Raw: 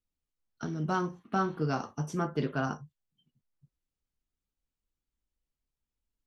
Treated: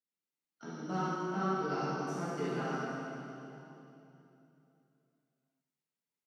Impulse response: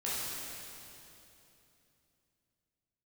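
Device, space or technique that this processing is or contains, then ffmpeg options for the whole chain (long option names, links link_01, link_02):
PA in a hall: -filter_complex "[0:a]highpass=frequency=170:width=0.5412,highpass=frequency=170:width=1.3066,equalizer=frequency=2100:width_type=o:width=0.21:gain=5.5,aecho=1:1:96:0.376[link_01];[1:a]atrim=start_sample=2205[link_02];[link_01][link_02]afir=irnorm=-1:irlink=0,volume=-8.5dB"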